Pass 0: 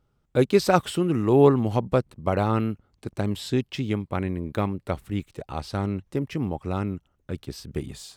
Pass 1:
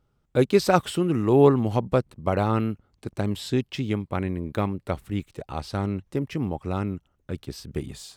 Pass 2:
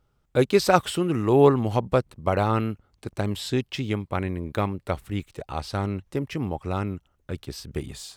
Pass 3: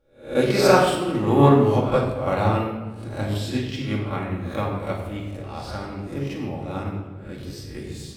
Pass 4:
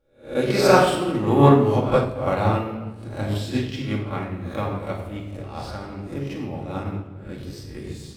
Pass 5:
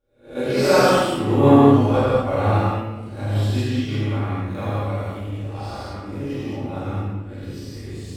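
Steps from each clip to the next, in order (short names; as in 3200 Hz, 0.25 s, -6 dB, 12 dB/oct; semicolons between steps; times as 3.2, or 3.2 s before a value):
nothing audible
bell 210 Hz -4.5 dB 2.1 oct; gain +2.5 dB
spectral swells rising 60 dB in 0.43 s; shoebox room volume 1100 m³, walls mixed, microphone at 2.3 m; upward expander 1.5:1, over -23 dBFS; gain -1 dB
in parallel at -7 dB: backlash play -35.5 dBFS; on the sum: noise-modulated level, depth 50%; gain -1 dB
non-linear reverb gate 0.26 s flat, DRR -7.5 dB; gain -7 dB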